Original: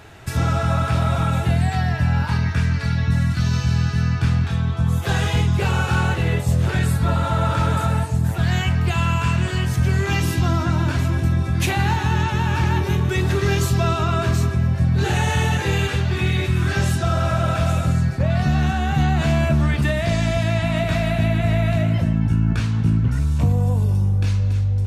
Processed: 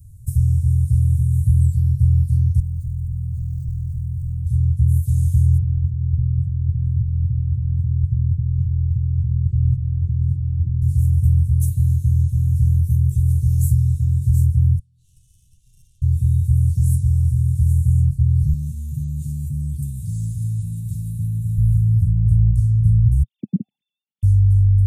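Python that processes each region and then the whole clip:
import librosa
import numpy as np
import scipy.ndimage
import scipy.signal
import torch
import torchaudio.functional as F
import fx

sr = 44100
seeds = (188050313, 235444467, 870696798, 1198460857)

y = fx.chain(x, sr, fx.clip_hard(threshold_db=-26.5),
    fx.air_absorb(metres=90.0),
    fx.resample_linear(factor=4), at=(2.6, 4.46))
y = fx.chain(y, sr, fx.over_compress(threshold_db=-21.0, ratio=-0.5),
    fx.lowpass_res(hz=1400.0, q=1.8), at=(5.58, 10.82))
y = fx.chain(y, sr, fx.bandpass_q(hz=3000.0, q=4.8),
    fx.tube_stage(drive_db=26.0, bias=0.5), at=(14.79, 16.02))
y = fx.chain(y, sr, fx.bessel_highpass(hz=190.0, order=2),
    fx.env_flatten(amount_pct=50), at=(18.53, 21.58))
y = fx.chain(y, sr, fx.sine_speech(),
    fx.cheby1_highpass(hz=210.0, order=4),
    fx.tilt_eq(slope=-4.0), at=(23.23, 24.23))
y = scipy.signal.sosfilt(scipy.signal.cheby1(3, 1.0, [120.0, 9300.0], 'bandstop', fs=sr, output='sos'), y)
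y = fx.low_shelf(y, sr, hz=77.0, db=8.5)
y = y * 10.0 ** (2.5 / 20.0)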